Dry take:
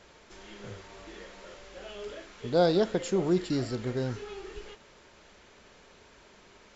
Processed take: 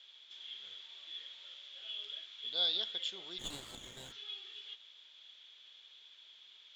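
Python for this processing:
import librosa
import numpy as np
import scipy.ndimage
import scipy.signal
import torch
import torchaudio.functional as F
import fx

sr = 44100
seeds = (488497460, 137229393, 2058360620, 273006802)

y = fx.bandpass_q(x, sr, hz=3400.0, q=17.0)
y = fx.running_max(y, sr, window=5, at=(3.38, 4.11), fade=0.02)
y = y * 10.0 ** (15.5 / 20.0)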